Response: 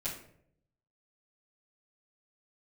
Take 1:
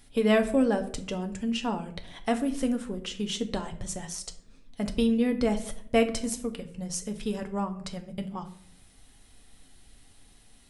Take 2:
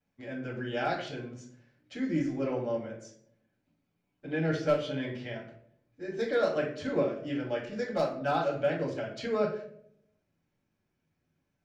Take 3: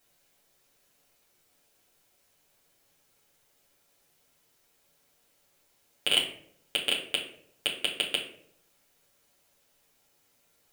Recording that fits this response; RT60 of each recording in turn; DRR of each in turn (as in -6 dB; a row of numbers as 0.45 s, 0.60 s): 2; 0.65 s, 0.65 s, 0.65 s; 5.5 dB, -13.5 dB, -4.5 dB